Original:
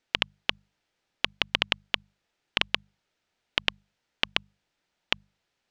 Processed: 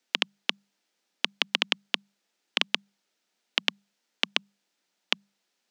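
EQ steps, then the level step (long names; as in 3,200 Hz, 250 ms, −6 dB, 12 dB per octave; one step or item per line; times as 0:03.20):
Butterworth high-pass 180 Hz 72 dB per octave
bass and treble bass +3 dB, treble +8 dB
−1.5 dB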